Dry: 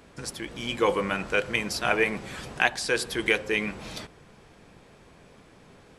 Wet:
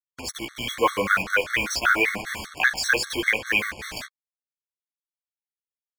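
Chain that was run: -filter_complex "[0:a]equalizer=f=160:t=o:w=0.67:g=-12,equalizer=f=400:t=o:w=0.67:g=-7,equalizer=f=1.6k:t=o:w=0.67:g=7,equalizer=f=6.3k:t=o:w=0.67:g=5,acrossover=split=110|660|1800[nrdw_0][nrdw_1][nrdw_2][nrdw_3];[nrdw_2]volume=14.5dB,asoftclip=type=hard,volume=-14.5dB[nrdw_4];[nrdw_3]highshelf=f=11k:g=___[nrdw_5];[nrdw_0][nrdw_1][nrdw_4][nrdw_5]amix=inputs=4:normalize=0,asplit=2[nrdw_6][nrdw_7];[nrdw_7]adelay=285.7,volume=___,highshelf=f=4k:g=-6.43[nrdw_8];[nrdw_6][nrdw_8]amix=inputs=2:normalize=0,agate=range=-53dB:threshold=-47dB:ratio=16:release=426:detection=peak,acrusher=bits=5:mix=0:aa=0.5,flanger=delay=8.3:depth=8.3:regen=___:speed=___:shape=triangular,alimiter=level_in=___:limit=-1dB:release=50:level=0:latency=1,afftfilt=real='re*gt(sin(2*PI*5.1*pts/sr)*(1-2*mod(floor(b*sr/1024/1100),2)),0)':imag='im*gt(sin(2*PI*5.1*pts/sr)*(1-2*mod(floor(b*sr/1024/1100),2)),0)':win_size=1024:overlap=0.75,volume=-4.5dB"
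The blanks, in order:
-11, -17dB, -1, 0.88, 14dB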